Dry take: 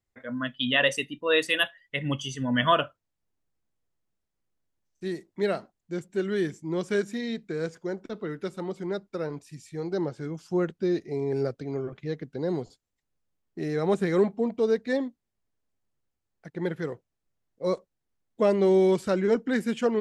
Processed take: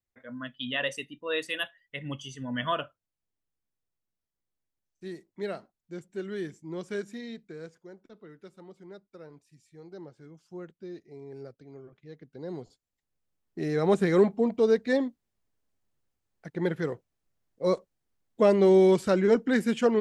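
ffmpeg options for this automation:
-af "volume=2.99,afade=t=out:st=7.18:d=0.69:silence=0.398107,afade=t=in:st=12.06:d=0.53:silence=0.421697,afade=t=in:st=12.59:d=1.34:silence=0.334965"

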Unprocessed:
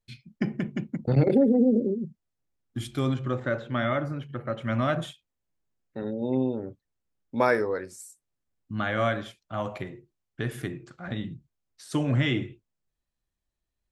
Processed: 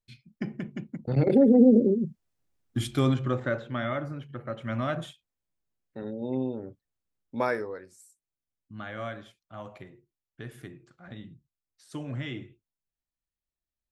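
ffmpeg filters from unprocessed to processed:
-af "volume=1.58,afade=t=in:st=1.09:d=0.53:silence=0.334965,afade=t=out:st=2.84:d=0.95:silence=0.398107,afade=t=out:st=7.37:d=0.44:silence=0.473151"

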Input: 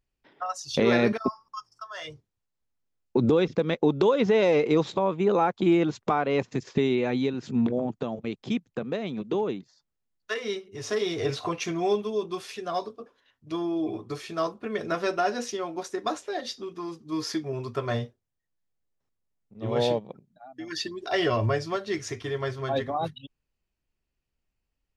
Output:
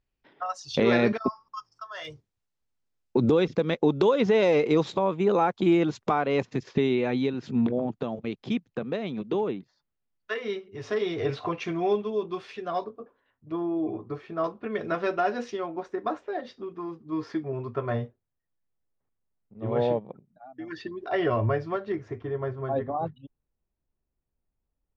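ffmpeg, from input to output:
-af "asetnsamples=n=441:p=0,asendcmd='2.05 lowpass f 8300;6.45 lowpass f 4800;9.48 lowpass f 2900;12.84 lowpass f 1500;14.44 lowpass f 2900;15.66 lowpass f 1800;21.92 lowpass f 1100',lowpass=4800"

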